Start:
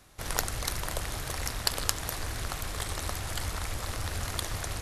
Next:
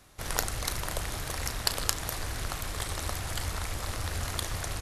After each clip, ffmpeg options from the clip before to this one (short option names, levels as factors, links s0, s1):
-filter_complex "[0:a]asplit=2[s0][s1];[s1]adelay=35,volume=0.224[s2];[s0][s2]amix=inputs=2:normalize=0"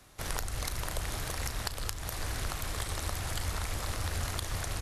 -filter_complex "[0:a]acrossover=split=120[s0][s1];[s1]acompressor=threshold=0.0224:ratio=6[s2];[s0][s2]amix=inputs=2:normalize=0"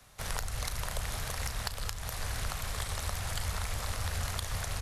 -filter_complex "[0:a]equalizer=f=320:w=2.8:g=-11.5,acrossover=split=150|7000[s0][s1][s2];[s2]asoftclip=type=tanh:threshold=0.0376[s3];[s0][s1][s3]amix=inputs=3:normalize=0"